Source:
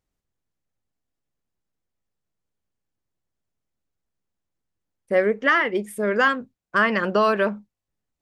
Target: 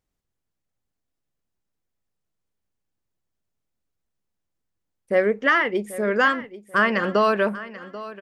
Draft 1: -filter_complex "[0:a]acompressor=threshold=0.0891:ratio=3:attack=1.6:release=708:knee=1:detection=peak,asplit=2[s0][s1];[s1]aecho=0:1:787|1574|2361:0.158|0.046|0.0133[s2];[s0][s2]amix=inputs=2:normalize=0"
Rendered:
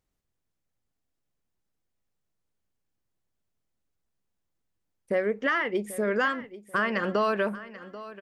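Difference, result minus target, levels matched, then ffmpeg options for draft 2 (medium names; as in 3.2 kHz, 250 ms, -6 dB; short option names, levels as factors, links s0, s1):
compression: peak gain reduction +8 dB
-filter_complex "[0:a]asplit=2[s0][s1];[s1]aecho=0:1:787|1574|2361:0.158|0.046|0.0133[s2];[s0][s2]amix=inputs=2:normalize=0"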